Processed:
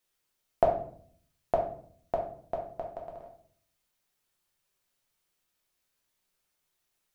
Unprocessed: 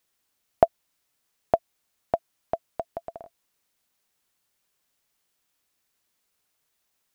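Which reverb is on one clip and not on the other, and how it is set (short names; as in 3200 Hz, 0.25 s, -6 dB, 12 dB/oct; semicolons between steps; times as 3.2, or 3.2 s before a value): shoebox room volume 70 m³, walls mixed, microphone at 0.86 m; gain -7 dB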